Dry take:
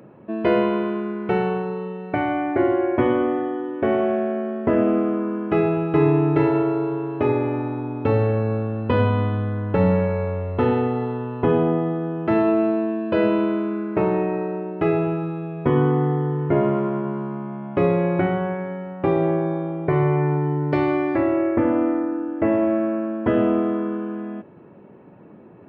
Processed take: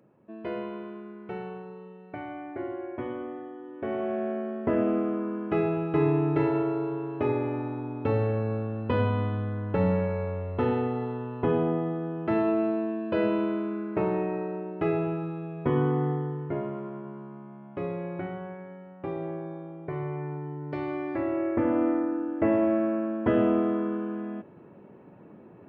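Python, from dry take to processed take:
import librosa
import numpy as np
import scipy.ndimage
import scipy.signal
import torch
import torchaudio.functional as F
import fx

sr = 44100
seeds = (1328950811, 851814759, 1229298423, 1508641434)

y = fx.gain(x, sr, db=fx.line((3.57, -15.5), (4.28, -6.5), (16.1, -6.5), (16.69, -14.0), (20.58, -14.0), (21.88, -4.0)))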